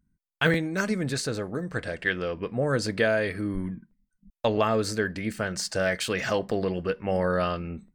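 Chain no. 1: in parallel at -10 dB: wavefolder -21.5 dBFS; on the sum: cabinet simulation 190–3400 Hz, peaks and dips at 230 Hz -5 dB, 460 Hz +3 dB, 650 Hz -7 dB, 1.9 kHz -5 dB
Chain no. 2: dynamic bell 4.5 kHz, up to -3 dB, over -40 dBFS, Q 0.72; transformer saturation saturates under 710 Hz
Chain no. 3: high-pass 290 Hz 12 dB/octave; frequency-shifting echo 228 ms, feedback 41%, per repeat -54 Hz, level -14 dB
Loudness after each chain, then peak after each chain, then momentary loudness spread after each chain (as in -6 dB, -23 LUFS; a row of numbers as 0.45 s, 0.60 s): -27.5 LUFS, -29.5 LUFS, -28.5 LUFS; -10.5 dBFS, -10.5 dBFS, -8.5 dBFS; 7 LU, 7 LU, 9 LU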